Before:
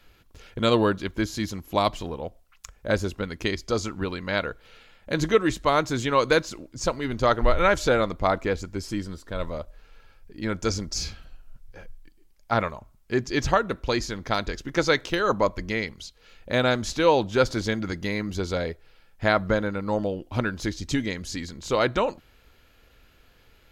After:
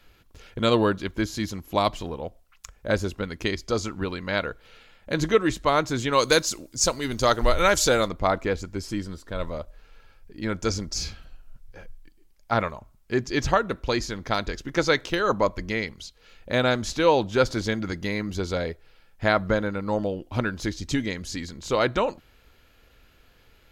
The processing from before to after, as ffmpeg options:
-filter_complex "[0:a]asplit=3[a][b][c];[a]afade=t=out:st=6.12:d=0.02[d];[b]bass=f=250:g=-1,treble=f=4k:g=14,afade=t=in:st=6.12:d=0.02,afade=t=out:st=8.07:d=0.02[e];[c]afade=t=in:st=8.07:d=0.02[f];[d][e][f]amix=inputs=3:normalize=0"

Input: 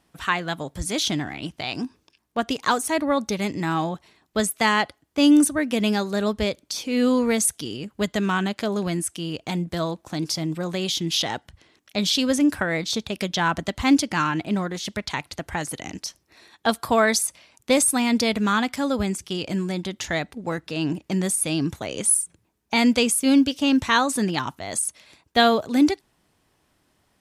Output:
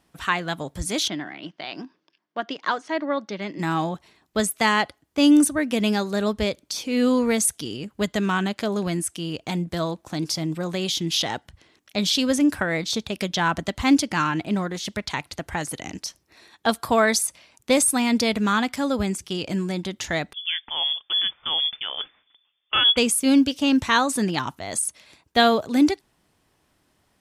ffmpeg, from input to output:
-filter_complex "[0:a]asplit=3[a][b][c];[a]afade=t=out:st=1.07:d=0.02[d];[b]highpass=f=200:w=0.5412,highpass=f=200:w=1.3066,equalizer=f=240:t=q:w=4:g=-10,equalizer=f=450:t=q:w=4:g=-7,equalizer=f=820:t=q:w=4:g=-5,equalizer=f=1.2k:t=q:w=4:g=-3,equalizer=f=2.5k:t=q:w=4:g=-6,equalizer=f=3.9k:t=q:w=4:g=-6,lowpass=f=4.4k:w=0.5412,lowpass=f=4.4k:w=1.3066,afade=t=in:st=1.07:d=0.02,afade=t=out:st=3.58:d=0.02[e];[c]afade=t=in:st=3.58:d=0.02[f];[d][e][f]amix=inputs=3:normalize=0,asettb=1/sr,asplit=3[g][h][i];[g]atrim=end=20.334[j];[h]atrim=start=20.33:end=22.97,asetpts=PTS-STARTPTS,afade=t=in:d=0.004:c=qsin,afade=t=out:st=2.636:d=0.004:c=qsin,lowpass=f=3.1k:t=q:w=0.5098,lowpass=f=3.1k:t=q:w=0.6013,lowpass=f=3.1k:t=q:w=0.9,lowpass=f=3.1k:t=q:w=2.563,afreqshift=-3600[k];[i]atrim=start=22.966[l];[j][k]acrossfade=d=0.004:c1=hsin:c2=qsin[m];[m][l]acrossfade=d=0.004:c1=qsin:c2=hsin"

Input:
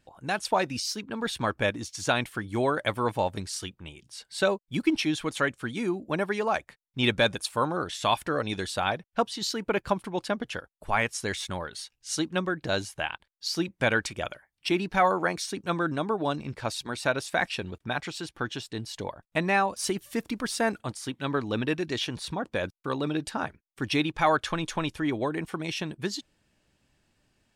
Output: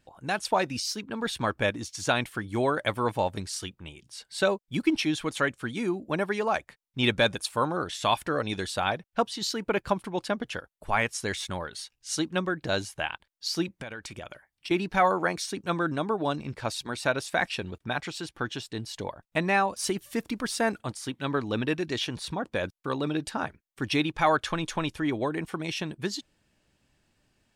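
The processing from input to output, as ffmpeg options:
-filter_complex "[0:a]asettb=1/sr,asplit=3[a][b][c];[a]atrim=end=13.794[d];[b]atrim=start=13.79:end=14.71,asetpts=PTS-STARTPTS,afade=t=in:d=0.004:c=qsin,afade=t=out:st=0.916:d=0.004:c=qsin,acompressor=threshold=-35dB:ratio=8:attack=3.2:release=140:knee=1:detection=peak[e];[c]atrim=start=14.706[f];[d][e]acrossfade=d=0.004:c1=hsin:c2=qsin[g];[g][f]acrossfade=d=0.004:c1=qsin:c2=hsin"

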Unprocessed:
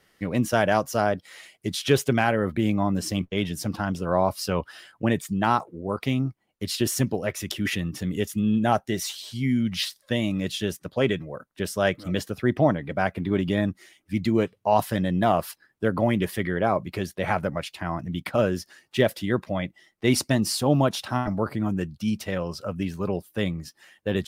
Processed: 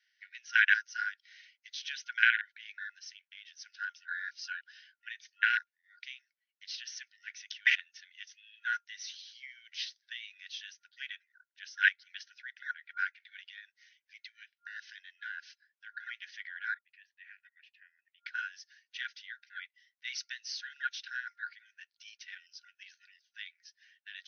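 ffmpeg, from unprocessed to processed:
-filter_complex "[0:a]asettb=1/sr,asplit=3[a][b][c];[a]atrim=end=2.984[d];[b]atrim=start=2.98:end=3.59,asetpts=PTS-STARTPTS,afade=t=in:d=0.004:c=qsin,afade=t=out:st=0.606:d=0.004:c=qsin,acompressor=threshold=-30dB:ratio=3:attack=3.2:release=140:knee=1:detection=peak[e];[c]atrim=start=3.586[f];[d][e]acrossfade=d=0.004:c1=hsin:c2=qsin[g];[g][f]acrossfade=d=0.004:c1=qsin:c2=hsin,asettb=1/sr,asplit=3[h][i][j];[h]atrim=end=13.474[k];[i]atrim=start=13.47:end=16,asetpts=PTS-STARTPTS,afade=t=in:d=0.004:c=qsin,afade=t=out:st=2.526:d=0.004:c=qsin,acompressor=threshold=-24dB:ratio=2.5:attack=3.2:release=140:knee=1:detection=peak[l];[j]atrim=start=15.996[m];[k][l]acrossfade=d=0.004:c1=hsin:c2=qsin[n];[n][m]acrossfade=d=0.004:c1=qsin:c2=hsin,asettb=1/sr,asplit=3[o][p][q];[o]atrim=end=16.744[r];[p]atrim=start=16.74:end=18.26,asetpts=PTS-STARTPTS,afade=t=in:d=0.004:c=qsin,afade=t=out:st=1.516:d=0.004:c=qsin,asplit=3[s][t][u];[s]bandpass=f=530:t=q:w=8,volume=0dB[v];[t]bandpass=f=1.84k:t=q:w=8,volume=-6dB[w];[u]bandpass=f=2.48k:t=q:w=8,volume=-9dB[x];[v][w][x]amix=inputs=3:normalize=0[y];[q]atrim=start=18.256[z];[r][y]acrossfade=d=0.004:c1=hsin:c2=qsin[aa];[aa][z]acrossfade=d=0.004:c1=qsin:c2=hsin,afwtdn=0.0501,afftfilt=real='re*between(b*sr/4096,1400,6400)':imag='im*between(b*sr/4096,1400,6400)':win_size=4096:overlap=0.75,volume=6.5dB"

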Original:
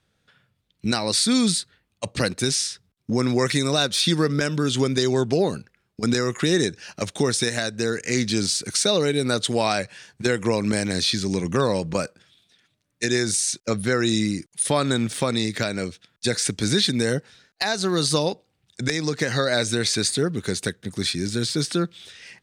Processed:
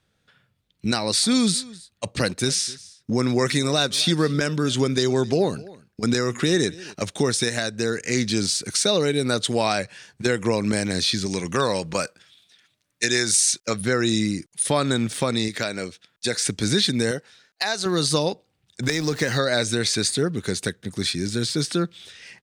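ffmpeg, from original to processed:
-filter_complex "[0:a]asplit=3[a][b][c];[a]afade=t=out:st=1.22:d=0.02[d];[b]aecho=1:1:261:0.0891,afade=t=in:st=1.22:d=0.02,afade=t=out:st=6.93:d=0.02[e];[c]afade=t=in:st=6.93:d=0.02[f];[d][e][f]amix=inputs=3:normalize=0,asettb=1/sr,asplit=3[g][h][i];[g]atrim=end=11.264[j];[h]atrim=start=11.26:end=13.81,asetpts=PTS-STARTPTS,afade=t=in:d=0.004:c=qsin,afade=t=out:st=2.546:d=0.004:c=qsin,tiltshelf=f=670:g=-4.5[k];[i]atrim=start=13.806[l];[j][k]acrossfade=d=0.004:c1=hsin:c2=qsin[m];[m][l]acrossfade=d=0.004:c1=qsin:c2=hsin,asettb=1/sr,asplit=3[n][o][p];[n]atrim=end=15.484[q];[o]atrim=start=15.48:end=16.39,asetpts=PTS-STARTPTS,afade=t=in:d=0.004:c=qsin,afade=t=out:st=0.906:d=0.004:c=qsin,lowshelf=f=220:g=-8.5[r];[p]atrim=start=16.386[s];[q][r]acrossfade=d=0.004:c1=hsin:c2=qsin[t];[t][s]acrossfade=d=0.004:c1=qsin:c2=hsin,asettb=1/sr,asplit=3[u][v][w];[u]atrim=end=17.114[x];[v]atrim=start=17.11:end=17.86,asetpts=PTS-STARTPTS,afade=t=in:d=0.004:c=qsin,afade=t=out:st=0.746:d=0.004:c=qsin,lowshelf=f=270:g=-11.5[y];[w]atrim=start=17.856[z];[x][y]acrossfade=d=0.004:c1=hsin:c2=qsin[aa];[aa][z]acrossfade=d=0.004:c1=qsin:c2=hsin,asettb=1/sr,asplit=3[ab][ac][ad];[ab]atrim=end=18.834[ae];[ac]atrim=start=18.83:end=19.38,asetpts=PTS-STARTPTS,afade=t=in:d=0.004:c=qsin,afade=t=out:st=0.546:d=0.004:c=qsin,aeval=exprs='val(0)+0.5*0.0178*sgn(val(0))':c=same[af];[ad]atrim=start=19.376[ag];[ae][af]acrossfade=d=0.004:c1=hsin:c2=qsin[ah];[ah][ag]acrossfade=d=0.004:c1=qsin:c2=hsin"

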